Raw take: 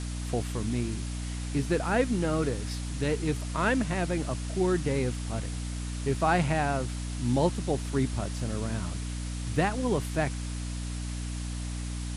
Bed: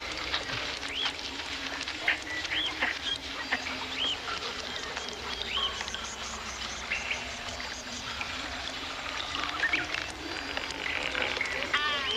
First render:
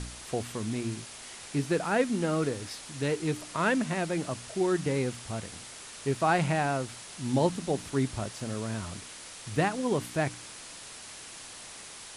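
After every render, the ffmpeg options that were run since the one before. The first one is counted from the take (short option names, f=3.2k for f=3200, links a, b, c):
-af "bandreject=f=60:t=h:w=4,bandreject=f=120:t=h:w=4,bandreject=f=180:t=h:w=4,bandreject=f=240:t=h:w=4,bandreject=f=300:t=h:w=4"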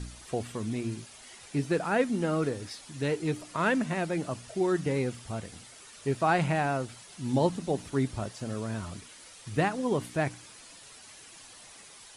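-af "afftdn=nr=9:nf=-46"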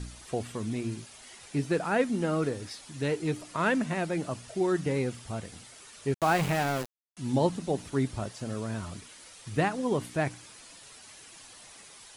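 -filter_complex "[0:a]asettb=1/sr,asplit=3[a][b][c];[a]atrim=end=6.144[d];[b]atrim=start=6.14:end=7.17,asetpts=PTS-STARTPTS,afade=t=in:d=0.004:c=qsin,afade=t=out:st=1.026:d=0.004:c=qsin,aeval=exprs='val(0)*gte(abs(val(0)),0.0299)':c=same[e];[c]atrim=start=7.166[f];[d][e]acrossfade=d=0.004:c1=hsin:c2=qsin[g];[g][f]acrossfade=d=0.004:c1=qsin:c2=hsin"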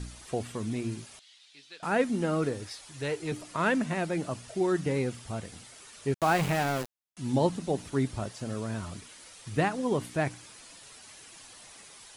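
-filter_complex "[0:a]asettb=1/sr,asplit=3[a][b][c];[a]atrim=end=1.194[d];[b]atrim=start=1.19:end=1.83,asetpts=PTS-STARTPTS,afade=t=in:d=0.004:c=qsin,afade=t=out:st=0.636:d=0.004:c=qsin,bandpass=f=3.7k:t=q:w=3[e];[c]atrim=start=1.826[f];[d][e]acrossfade=d=0.004:c1=hsin:c2=qsin[g];[g][f]acrossfade=d=0.004:c1=qsin:c2=hsin,asettb=1/sr,asplit=3[h][i][j];[h]atrim=end=2.644[k];[i]atrim=start=2.64:end=3.32,asetpts=PTS-STARTPTS,afade=t=in:d=0.004:c=qsin,afade=t=out:st=0.676:d=0.004:c=qsin,equalizer=f=220:w=1.5:g=-12[l];[j]atrim=start=3.316[m];[k][l]acrossfade=d=0.004:c1=hsin:c2=qsin[n];[n][m]acrossfade=d=0.004:c1=qsin:c2=hsin"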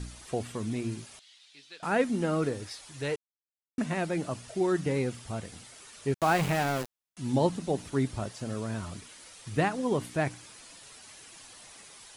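-filter_complex "[0:a]asplit=3[a][b][c];[a]atrim=end=3.16,asetpts=PTS-STARTPTS,afade=t=out:st=3.156:d=0.004:c=hsin[d];[b]atrim=start=3.16:end=3.78,asetpts=PTS-STARTPTS,volume=0[e];[c]atrim=start=3.78,asetpts=PTS-STARTPTS,afade=t=in:d=0.004:c=hsin[f];[d][e][f]concat=n=3:v=0:a=1"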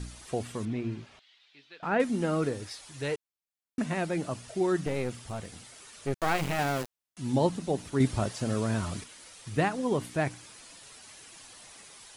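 -filter_complex "[0:a]asettb=1/sr,asplit=3[a][b][c];[a]atrim=end=0.654[d];[b]atrim=start=0.65:end=2,asetpts=PTS-STARTPTS,afade=t=in:d=0.004:c=qsin,afade=t=out:st=1.346:d=0.004:c=qsin,lowpass=3k[e];[c]atrim=start=1.996[f];[d][e]acrossfade=d=0.004:c1=hsin:c2=qsin[g];[g][f]acrossfade=d=0.004:c1=qsin:c2=hsin,asettb=1/sr,asplit=3[h][i][j];[h]atrim=end=4.864[k];[i]atrim=start=4.86:end=6.59,asetpts=PTS-STARTPTS,afade=t=in:d=0.004:c=qsin,afade=t=out:st=1.726:d=0.004:c=qsin,aeval=exprs='clip(val(0),-1,0.0158)':c=same[l];[j]atrim=start=6.586[m];[k][l]acrossfade=d=0.004:c1=hsin:c2=qsin[n];[n][m]acrossfade=d=0.004:c1=qsin:c2=hsin,asettb=1/sr,asplit=3[o][p][q];[o]atrim=end=8.004[r];[p]atrim=start=8:end=9.04,asetpts=PTS-STARTPTS,afade=t=in:d=0.004:c=qsin,afade=t=out:st=1.036:d=0.004:c=qsin,acontrast=30[s];[q]atrim=start=9.036[t];[r][s]acrossfade=d=0.004:c1=hsin:c2=qsin[u];[u][t]acrossfade=d=0.004:c1=qsin:c2=hsin"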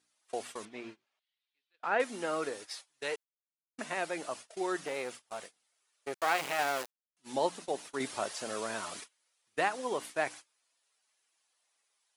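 -af "highpass=560,agate=range=-27dB:threshold=-45dB:ratio=16:detection=peak"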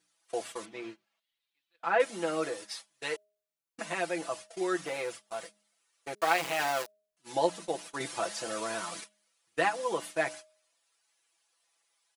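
-af "aecho=1:1:6:0.83,bandreject=f=208:t=h:w=4,bandreject=f=416:t=h:w=4,bandreject=f=624:t=h:w=4"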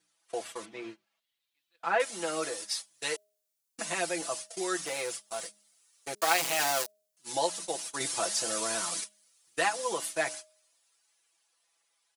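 -filter_complex "[0:a]acrossover=split=540|4400[a][b][c];[a]alimiter=level_in=6.5dB:limit=-24dB:level=0:latency=1:release=457,volume=-6.5dB[d];[c]dynaudnorm=f=360:g=11:m=11dB[e];[d][b][e]amix=inputs=3:normalize=0"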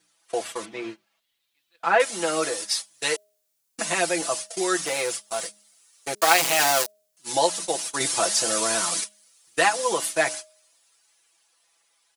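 -af "volume=8dB"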